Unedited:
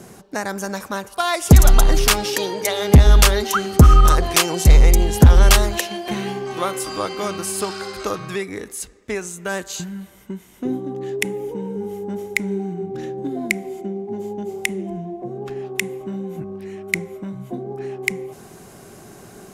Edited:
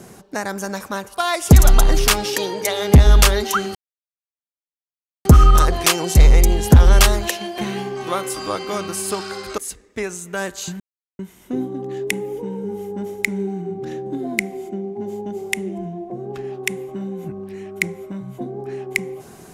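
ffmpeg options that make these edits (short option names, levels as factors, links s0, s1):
-filter_complex "[0:a]asplit=5[s0][s1][s2][s3][s4];[s0]atrim=end=3.75,asetpts=PTS-STARTPTS,afade=t=out:st=3.746:d=0.004:c=hsin,apad=pad_dur=1.5[s5];[s1]atrim=start=3.75:end=8.082,asetpts=PTS-STARTPTS,afade=t=in:d=0.004:c=hsin[s6];[s2]atrim=start=8.698:end=9.92,asetpts=PTS-STARTPTS,afade=t=out:st=1.218:d=0.004:c=hsin[s7];[s3]atrim=start=9.92:end=10.31,asetpts=PTS-STARTPTS,volume=0[s8];[s4]atrim=start=10.31,asetpts=PTS-STARTPTS,afade=t=in:d=0.004:c=hsin[s9];[s5][s6]concat=n=2:v=0:a=1[s10];[s7][s8][s9]concat=n=3:v=0:a=1[s11];[s10][s11]acrossfade=d=0.004:c1=hsin:c2=hsin"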